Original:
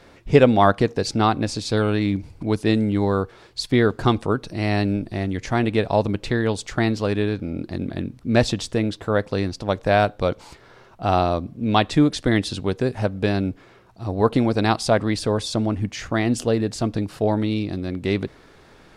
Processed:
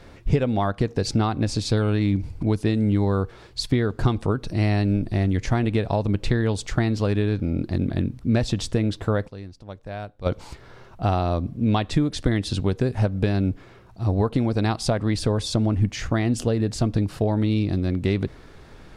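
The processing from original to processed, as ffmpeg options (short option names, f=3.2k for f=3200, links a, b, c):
-filter_complex "[0:a]asplit=3[a][b][c];[a]atrim=end=9.4,asetpts=PTS-STARTPTS,afade=t=out:st=9.27:d=0.13:c=exp:silence=0.125893[d];[b]atrim=start=9.4:end=10.14,asetpts=PTS-STARTPTS,volume=-18dB[e];[c]atrim=start=10.14,asetpts=PTS-STARTPTS,afade=t=in:d=0.13:c=exp:silence=0.125893[f];[d][e][f]concat=n=3:v=0:a=1,acompressor=threshold=-20dB:ratio=10,lowshelf=f=140:g=11"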